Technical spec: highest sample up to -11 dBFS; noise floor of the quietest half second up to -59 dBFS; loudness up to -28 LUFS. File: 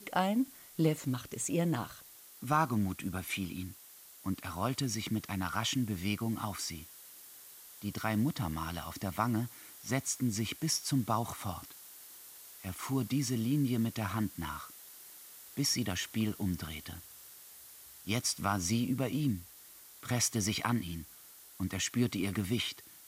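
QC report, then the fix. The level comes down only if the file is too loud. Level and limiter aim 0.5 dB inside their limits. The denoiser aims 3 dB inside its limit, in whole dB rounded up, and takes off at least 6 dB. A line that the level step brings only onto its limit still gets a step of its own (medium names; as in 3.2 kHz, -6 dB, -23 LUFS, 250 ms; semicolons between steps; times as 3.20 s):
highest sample -14.5 dBFS: pass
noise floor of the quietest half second -55 dBFS: fail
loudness -34.0 LUFS: pass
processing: noise reduction 7 dB, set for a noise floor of -55 dBFS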